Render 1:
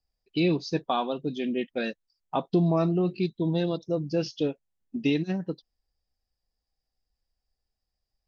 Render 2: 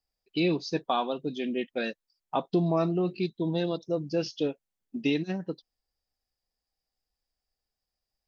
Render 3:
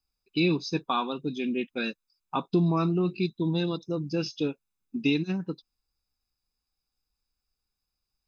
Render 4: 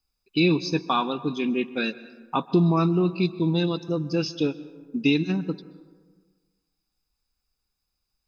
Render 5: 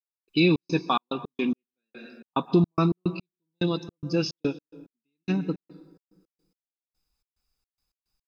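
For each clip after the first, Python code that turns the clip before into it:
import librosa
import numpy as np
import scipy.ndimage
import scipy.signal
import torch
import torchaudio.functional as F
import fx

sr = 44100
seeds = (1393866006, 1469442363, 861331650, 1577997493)

y1 = fx.low_shelf(x, sr, hz=160.0, db=-8.5)
y2 = y1 + 0.64 * np.pad(y1, (int(0.8 * sr / 1000.0), 0))[:len(y1)]
y3 = fx.rev_plate(y2, sr, seeds[0], rt60_s=1.5, hf_ratio=0.45, predelay_ms=115, drr_db=16.5)
y3 = y3 * 10.0 ** (4.0 / 20.0)
y4 = fx.step_gate(y3, sr, bpm=108, pattern='..xx.xx.x.x.', floor_db=-60.0, edge_ms=4.5)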